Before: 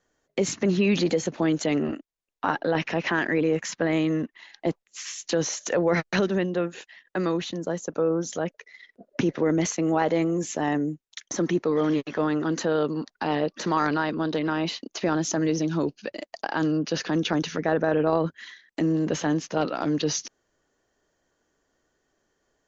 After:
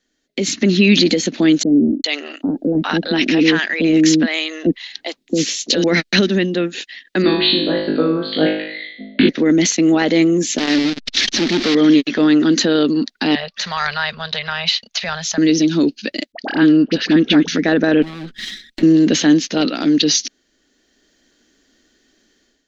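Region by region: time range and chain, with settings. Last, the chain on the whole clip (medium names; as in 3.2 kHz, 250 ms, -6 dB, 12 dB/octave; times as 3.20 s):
1.63–5.84 s: peaking EQ 1.8 kHz -3.5 dB 0.75 oct + bands offset in time lows, highs 410 ms, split 560 Hz
7.22–9.29 s: Chebyshev low-pass 4.6 kHz, order 10 + flutter echo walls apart 3.3 m, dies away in 0.71 s
10.58–11.75 s: one-bit delta coder 32 kbps, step -23.5 dBFS + transformer saturation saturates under 890 Hz
13.35–15.38 s: Chebyshev band-stop 120–750 Hz + treble shelf 4.4 kHz -7 dB
16.32–17.48 s: low-pass 2.7 kHz + phase dispersion highs, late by 53 ms, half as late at 970 Hz
18.02–18.83 s: comb filter that takes the minimum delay 5.3 ms + compression, threshold -36 dBFS
whole clip: ten-band graphic EQ 125 Hz -11 dB, 250 Hz +11 dB, 500 Hz -4 dB, 1 kHz -10 dB, 2 kHz +4 dB, 4 kHz +11 dB; level rider gain up to 11.5 dB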